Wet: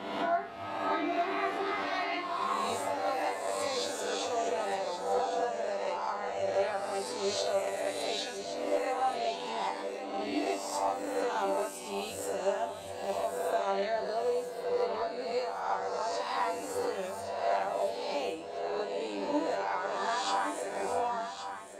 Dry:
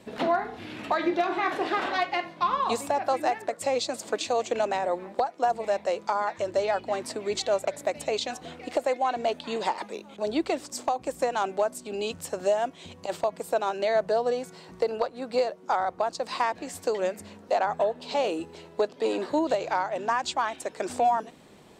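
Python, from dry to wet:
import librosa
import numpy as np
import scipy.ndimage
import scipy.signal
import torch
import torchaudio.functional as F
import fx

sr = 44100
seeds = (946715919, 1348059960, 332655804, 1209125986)

y = fx.spec_swells(x, sr, rise_s=1.26)
y = fx.comb_fb(y, sr, f0_hz=98.0, decay_s=0.33, harmonics='all', damping=0.0, mix_pct=90)
y = y + 10.0 ** (-9.5 / 20.0) * np.pad(y, (int(1119 * sr / 1000.0), 0))[:len(y)]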